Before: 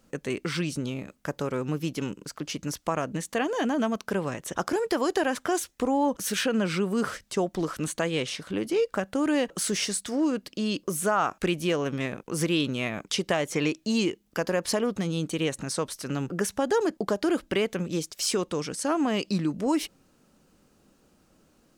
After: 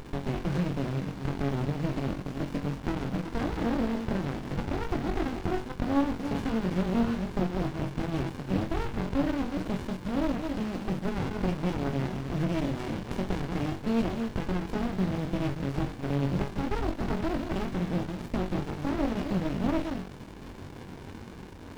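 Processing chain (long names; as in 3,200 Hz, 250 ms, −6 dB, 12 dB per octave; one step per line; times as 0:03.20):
delay that plays each chunk backwards 220 ms, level −11 dB
low-shelf EQ 170 Hz +7 dB
notch filter 1,100 Hz, Q 5.6
downward compressor 2.5 to 1, threshold −30 dBFS, peak gain reduction 8 dB
bit-depth reduction 6 bits, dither triangular
high-frequency loss of the air 320 metres
flutter between parallel walls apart 3.7 metres, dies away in 0.27 s
windowed peak hold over 65 samples
level +5 dB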